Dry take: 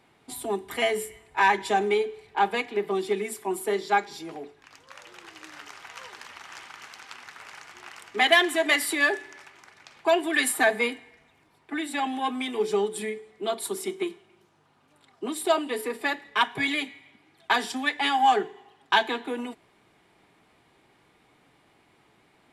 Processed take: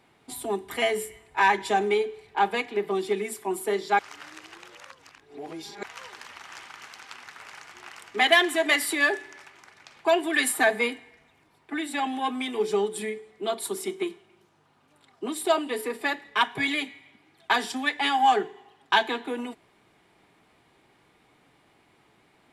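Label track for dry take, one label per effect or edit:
3.990000	5.830000	reverse

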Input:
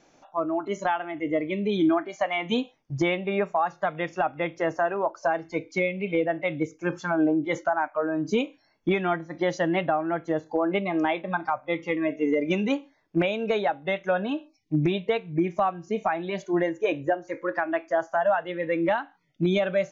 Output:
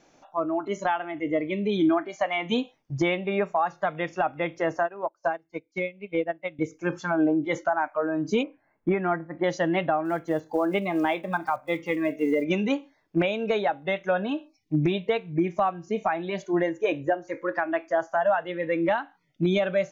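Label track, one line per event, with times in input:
4.830000	6.590000	expander for the loud parts 2.5 to 1, over −37 dBFS
8.430000	9.440000	low-pass filter 2,000 Hz 24 dB per octave
10.050000	12.460000	one scale factor per block 7 bits

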